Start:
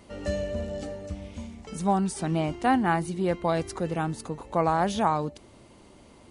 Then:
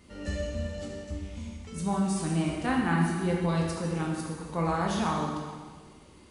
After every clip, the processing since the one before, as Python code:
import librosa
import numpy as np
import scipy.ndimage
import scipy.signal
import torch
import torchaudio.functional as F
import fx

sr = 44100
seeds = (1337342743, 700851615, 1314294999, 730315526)

y = fx.peak_eq(x, sr, hz=670.0, db=-8.5, octaves=1.1)
y = fx.rev_plate(y, sr, seeds[0], rt60_s=1.6, hf_ratio=0.95, predelay_ms=0, drr_db=-2.5)
y = F.gain(torch.from_numpy(y), -4.0).numpy()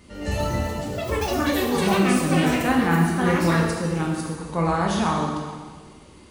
y = fx.echo_pitch(x, sr, ms=142, semitones=7, count=3, db_per_echo=-3.0)
y = F.gain(torch.from_numpy(y), 6.0).numpy()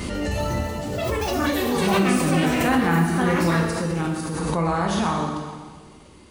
y = fx.pre_swell(x, sr, db_per_s=23.0)
y = F.gain(torch.from_numpy(y), -1.0).numpy()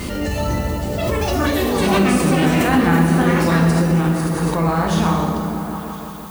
y = fx.dmg_noise_colour(x, sr, seeds[1], colour='violet', level_db=-46.0)
y = fx.echo_opening(y, sr, ms=168, hz=200, octaves=1, feedback_pct=70, wet_db=-3)
y = F.gain(torch.from_numpy(y), 3.0).numpy()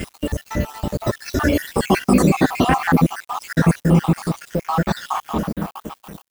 y = fx.spec_dropout(x, sr, seeds[2], share_pct=64)
y = np.sign(y) * np.maximum(np.abs(y) - 10.0 ** (-37.0 / 20.0), 0.0)
y = F.gain(torch.from_numpy(y), 3.5).numpy()